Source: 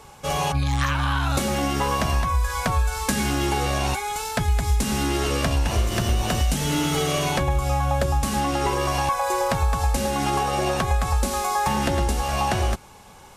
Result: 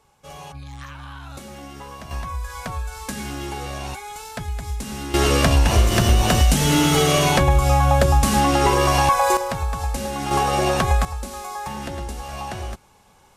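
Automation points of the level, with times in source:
−14.5 dB
from 0:02.11 −7 dB
from 0:05.14 +6 dB
from 0:09.37 −3 dB
from 0:10.31 +3.5 dB
from 0:11.05 −8 dB

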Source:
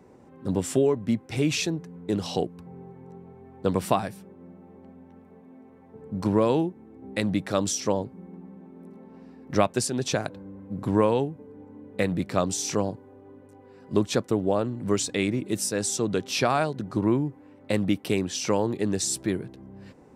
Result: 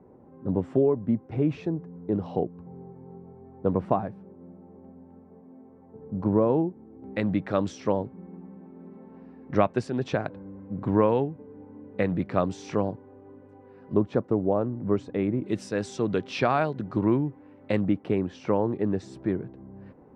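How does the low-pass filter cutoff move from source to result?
1,000 Hz
from 0:07.04 2,100 Hz
from 0:13.94 1,100 Hz
from 0:15.44 2,700 Hz
from 0:17.81 1,400 Hz

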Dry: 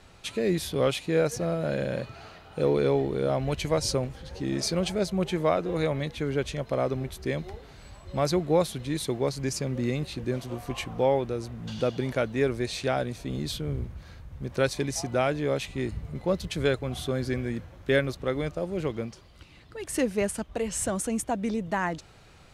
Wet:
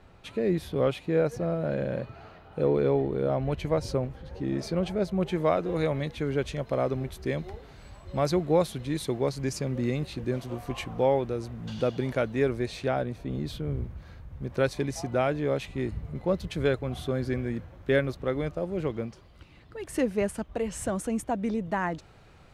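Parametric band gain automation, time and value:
parametric band 7,800 Hz 2.6 octaves
0:04.98 −14.5 dB
0:05.48 −4.5 dB
0:12.37 −4.5 dB
0:13.22 −15 dB
0:13.91 −8 dB

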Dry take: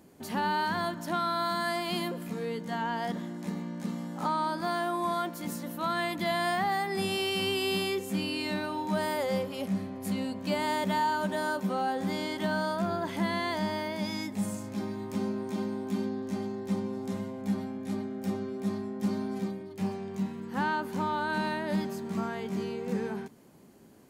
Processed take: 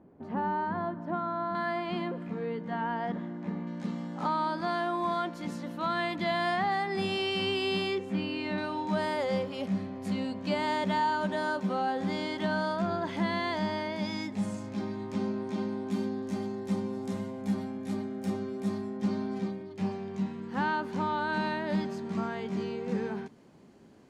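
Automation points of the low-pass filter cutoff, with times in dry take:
1,100 Hz
from 0:01.55 2,100 Hz
from 0:03.67 4,700 Hz
from 0:07.98 2,800 Hz
from 0:08.58 5,500 Hz
from 0:15.91 11,000 Hz
from 0:18.97 5,500 Hz

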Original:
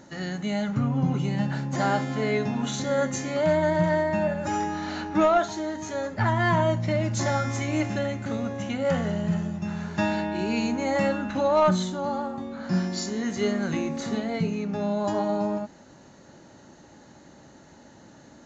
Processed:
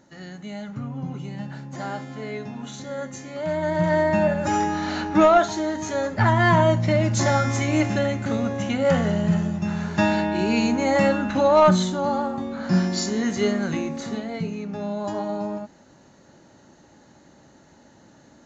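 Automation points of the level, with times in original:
0:03.32 −7 dB
0:04.06 +5 dB
0:13.20 +5 dB
0:14.28 −2 dB

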